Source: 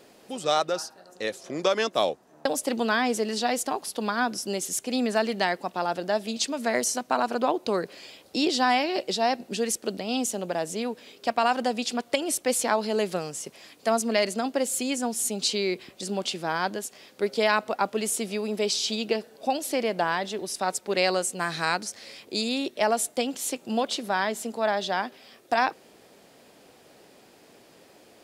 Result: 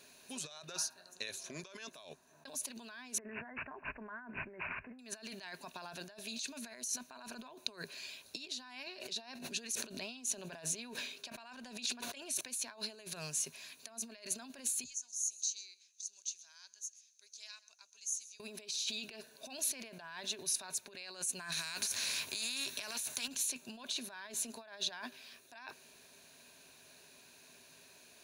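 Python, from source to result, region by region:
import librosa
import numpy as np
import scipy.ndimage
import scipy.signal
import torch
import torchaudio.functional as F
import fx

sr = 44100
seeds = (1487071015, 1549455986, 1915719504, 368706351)

y = fx.chain(x, sr, fx.brickwall_bandstop(low_hz=2200.0, high_hz=5600.0),
    fx.resample_bad(factor=8, down='none', up='filtered'), at=(3.18, 4.99))
y = fx.chain(y, sr, fx.highpass(hz=120.0, slope=12),
    fx.high_shelf(hz=9000.0, db=-6.5),
    fx.sustainer(db_per_s=74.0), at=(8.87, 12.41))
y = fx.chain(y, sr, fx.bandpass_q(hz=6300.0, q=7.7),
    fx.echo_single(ms=131, db=-19.0), at=(14.84, 18.4))
y = fx.chain(y, sr, fx.highpass(hz=45.0, slope=12),
    fx.doubler(ms=15.0, db=-14.0),
    fx.spectral_comp(ratio=2.0), at=(21.52, 23.28))
y = fx.ripple_eq(y, sr, per_octave=1.5, db=9)
y = fx.over_compress(y, sr, threshold_db=-32.0, ratio=-1.0)
y = fx.tone_stack(y, sr, knobs='5-5-5')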